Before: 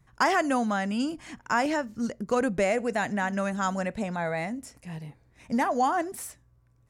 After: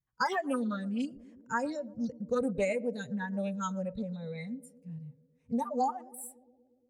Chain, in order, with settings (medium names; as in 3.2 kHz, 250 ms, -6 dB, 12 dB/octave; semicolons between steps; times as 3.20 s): spectral noise reduction 24 dB; band-passed feedback delay 117 ms, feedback 80%, band-pass 360 Hz, level -18 dB; loudspeaker Doppler distortion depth 0.14 ms; trim -4 dB